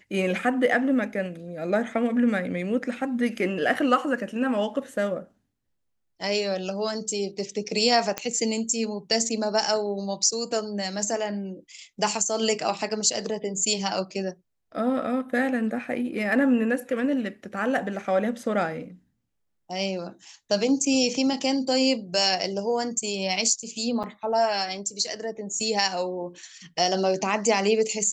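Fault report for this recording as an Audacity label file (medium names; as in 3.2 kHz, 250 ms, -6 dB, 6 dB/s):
8.180000	8.180000	pop -11 dBFS
24.030000	24.040000	dropout 7.3 ms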